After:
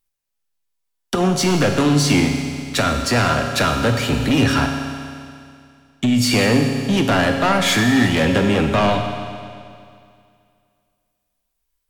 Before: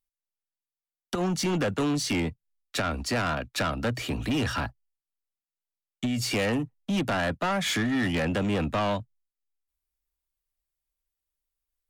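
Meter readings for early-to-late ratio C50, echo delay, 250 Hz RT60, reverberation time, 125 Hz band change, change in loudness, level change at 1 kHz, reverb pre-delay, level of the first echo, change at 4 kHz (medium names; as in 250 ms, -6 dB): 5.0 dB, no echo, 2.3 s, 2.3 s, +11.5 dB, +10.5 dB, +10.5 dB, 7 ms, no echo, +11.0 dB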